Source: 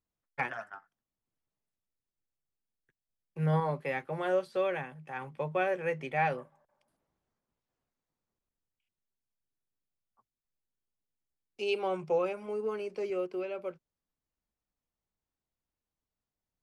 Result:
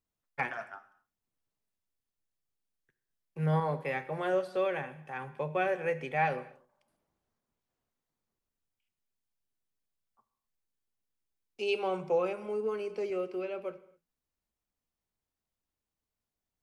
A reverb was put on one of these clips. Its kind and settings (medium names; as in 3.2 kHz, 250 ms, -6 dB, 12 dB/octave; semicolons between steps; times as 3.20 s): gated-style reverb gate 290 ms falling, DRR 12 dB